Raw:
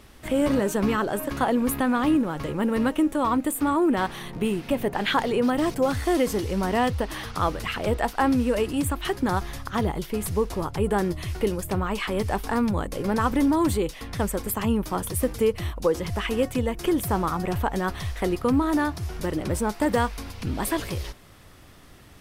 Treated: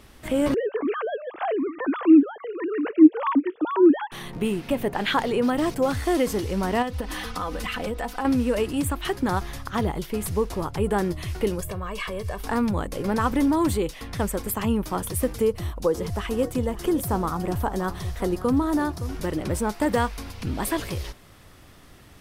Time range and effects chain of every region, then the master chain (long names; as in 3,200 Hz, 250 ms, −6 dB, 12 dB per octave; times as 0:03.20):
0:00.54–0:04.12: three sine waves on the formant tracks + low-shelf EQ 430 Hz +4.5 dB
0:06.82–0:08.25: comb filter 4 ms, depth 79% + downward compressor, threshold −25 dBFS
0:11.60–0:12.40: downward compressor 5 to 1, threshold −29 dBFS + comb filter 1.8 ms, depth 67%
0:15.41–0:19.15: dynamic equaliser 2,400 Hz, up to −7 dB, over −46 dBFS, Q 1.1 + single-tap delay 567 ms −15 dB
whole clip: no processing